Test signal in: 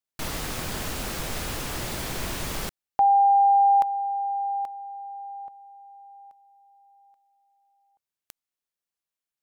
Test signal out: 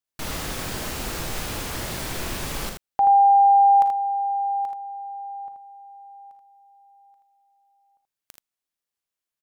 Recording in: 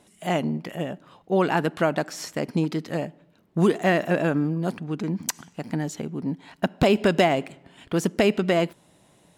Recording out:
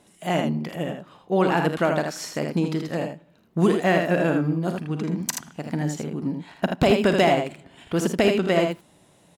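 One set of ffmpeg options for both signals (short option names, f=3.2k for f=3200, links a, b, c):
-af "aecho=1:1:40|53|80:0.2|0.224|0.531"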